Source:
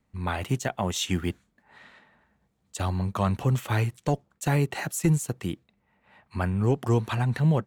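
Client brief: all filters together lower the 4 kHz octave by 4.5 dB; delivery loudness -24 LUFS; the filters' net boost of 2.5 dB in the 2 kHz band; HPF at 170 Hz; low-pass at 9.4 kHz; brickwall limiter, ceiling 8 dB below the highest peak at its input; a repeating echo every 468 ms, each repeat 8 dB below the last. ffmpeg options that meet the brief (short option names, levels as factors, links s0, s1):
-af "highpass=170,lowpass=9400,equalizer=f=2000:t=o:g=5,equalizer=f=4000:t=o:g=-8,alimiter=limit=0.112:level=0:latency=1,aecho=1:1:468|936|1404|1872|2340:0.398|0.159|0.0637|0.0255|0.0102,volume=2.51"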